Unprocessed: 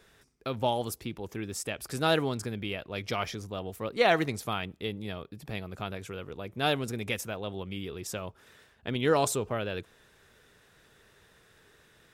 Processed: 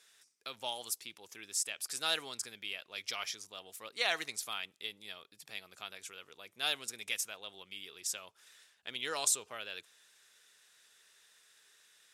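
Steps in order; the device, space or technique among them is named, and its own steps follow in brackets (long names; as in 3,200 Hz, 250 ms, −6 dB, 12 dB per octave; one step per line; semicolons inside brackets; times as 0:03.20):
piezo pickup straight into a mixer (low-pass filter 8,600 Hz 12 dB per octave; first difference)
level +6 dB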